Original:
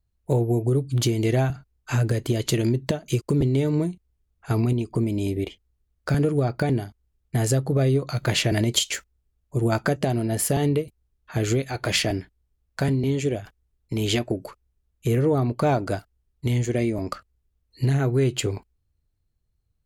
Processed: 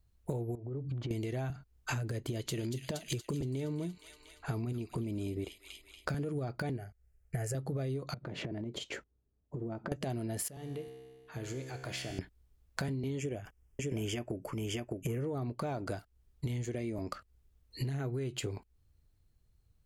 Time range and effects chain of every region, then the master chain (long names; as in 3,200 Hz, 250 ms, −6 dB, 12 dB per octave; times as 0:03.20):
0:00.55–0:01.11: low-pass filter 1,600 Hz + downward compressor 12 to 1, threshold −32 dBFS
0:02.17–0:06.24: delay with a high-pass on its return 235 ms, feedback 55%, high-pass 2,900 Hz, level −4 dB + one half of a high-frequency compander decoder only
0:06.77–0:07.55: high-shelf EQ 10,000 Hz −4.5 dB + phaser with its sweep stopped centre 1,000 Hz, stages 6
0:08.14–0:09.92: resonant band-pass 280 Hz, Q 0.7 + downward compressor 16 to 1, threshold −37 dBFS
0:10.48–0:12.19: downward compressor 1.5 to 1, threshold −44 dBFS + tuned comb filter 65 Hz, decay 1.8 s, mix 80%
0:13.18–0:15.24: Butterworth band-reject 4,000 Hz, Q 2.4 + single-tap delay 610 ms −8.5 dB
whole clip: brickwall limiter −16 dBFS; downward compressor 8 to 1, threshold −38 dBFS; level +4 dB